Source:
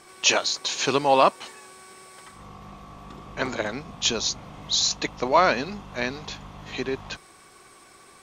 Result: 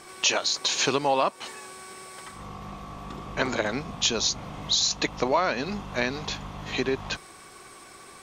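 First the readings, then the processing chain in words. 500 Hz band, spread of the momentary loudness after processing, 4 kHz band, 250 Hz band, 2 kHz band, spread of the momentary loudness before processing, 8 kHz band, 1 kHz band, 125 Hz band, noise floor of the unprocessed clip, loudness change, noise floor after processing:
-2.5 dB, 18 LU, -0.5 dB, 0.0 dB, -1.5 dB, 19 LU, -0.5 dB, -4.5 dB, +1.5 dB, -52 dBFS, -2.5 dB, -48 dBFS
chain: compressor 4:1, threshold -25 dBFS, peak gain reduction 11 dB; gain +4 dB

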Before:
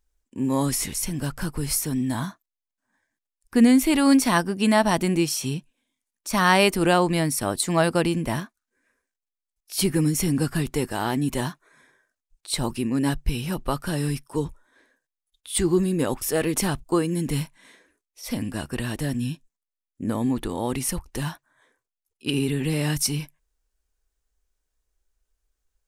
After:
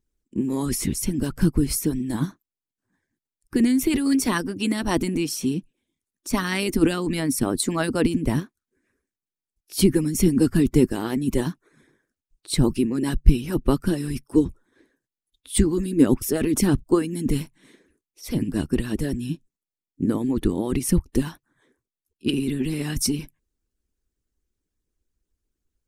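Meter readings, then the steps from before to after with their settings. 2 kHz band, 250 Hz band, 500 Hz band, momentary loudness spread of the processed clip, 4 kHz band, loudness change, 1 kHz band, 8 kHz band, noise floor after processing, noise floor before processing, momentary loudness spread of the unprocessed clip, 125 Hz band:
-4.5 dB, +2.0 dB, -0.5 dB, 9 LU, -2.5 dB, +0.5 dB, -7.5 dB, -1.5 dB, under -85 dBFS, under -85 dBFS, 13 LU, +1.0 dB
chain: harmonic-percussive split harmonic -17 dB; resonant low shelf 470 Hz +11 dB, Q 1.5

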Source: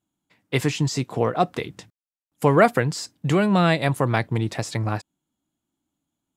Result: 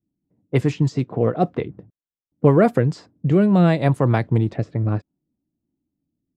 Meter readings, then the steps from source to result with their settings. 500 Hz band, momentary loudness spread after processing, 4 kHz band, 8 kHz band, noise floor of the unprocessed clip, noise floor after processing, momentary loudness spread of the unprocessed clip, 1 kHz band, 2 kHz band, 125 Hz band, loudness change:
+2.0 dB, 9 LU, -9.0 dB, under -10 dB, under -85 dBFS, under -85 dBFS, 11 LU, -2.5 dB, -5.5 dB, +5.0 dB, +2.5 dB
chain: rotary speaker horn 6.7 Hz, later 0.6 Hz, at 2.34; tilt shelf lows +6.5 dB, about 1200 Hz; low-pass opened by the level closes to 430 Hz, open at -13.5 dBFS

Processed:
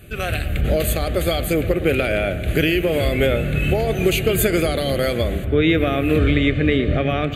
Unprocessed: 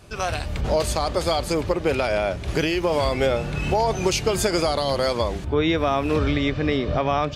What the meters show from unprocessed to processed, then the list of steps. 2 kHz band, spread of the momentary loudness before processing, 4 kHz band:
+5.5 dB, 3 LU, +1.5 dB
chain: bell 13000 Hz +14.5 dB 0.29 oct; fixed phaser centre 2300 Hz, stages 4; analogue delay 0.116 s, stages 2048, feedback 72%, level -14.5 dB; gain +6 dB

